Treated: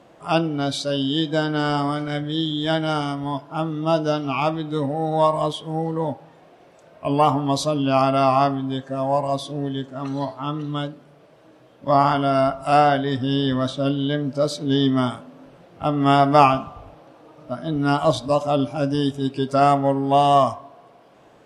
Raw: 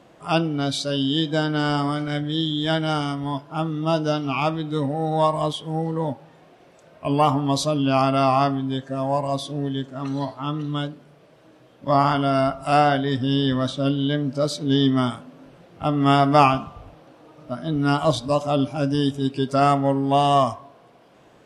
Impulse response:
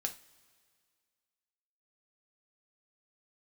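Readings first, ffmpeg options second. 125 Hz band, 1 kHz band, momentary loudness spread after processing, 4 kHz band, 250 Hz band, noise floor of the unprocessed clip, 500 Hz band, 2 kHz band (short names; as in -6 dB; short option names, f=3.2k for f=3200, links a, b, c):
-1.0 dB, +2.0 dB, 11 LU, -0.5 dB, 0.0 dB, -53 dBFS, +2.0 dB, 0.0 dB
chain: -filter_complex "[0:a]asplit=2[a][b];[b]bandpass=f=710:t=q:w=0.89:csg=0[c];[1:a]atrim=start_sample=2205[d];[c][d]afir=irnorm=-1:irlink=0,volume=-6.5dB[e];[a][e]amix=inputs=2:normalize=0,volume=-1dB"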